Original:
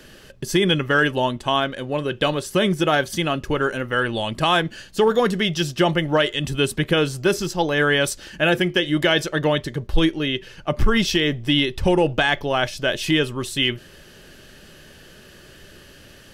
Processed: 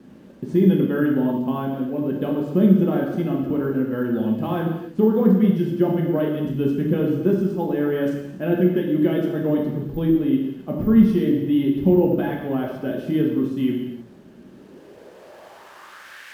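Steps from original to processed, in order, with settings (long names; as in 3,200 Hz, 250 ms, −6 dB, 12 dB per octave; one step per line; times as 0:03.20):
in parallel at −5 dB: bit-depth reduction 6 bits, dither triangular
on the sum: reverb whose tail is shaped and stops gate 350 ms falling, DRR −1.5 dB
bad sample-rate conversion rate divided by 3×, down none, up zero stuff
band-pass filter sweep 230 Hz → 1,800 Hz, 0:14.46–0:16.28
level +1.5 dB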